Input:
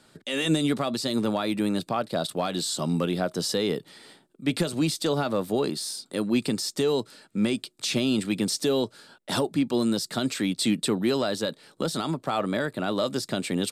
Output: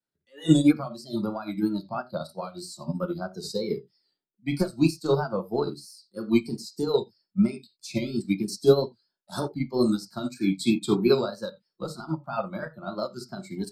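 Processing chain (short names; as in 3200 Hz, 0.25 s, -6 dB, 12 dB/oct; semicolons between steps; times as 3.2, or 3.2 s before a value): spectral noise reduction 22 dB; vibrato 3.1 Hz 95 cents; on a send at -3.5 dB: reverb, pre-delay 6 ms; on the sum: upward expander 2.5:1, over -31 dBFS; gain +6 dB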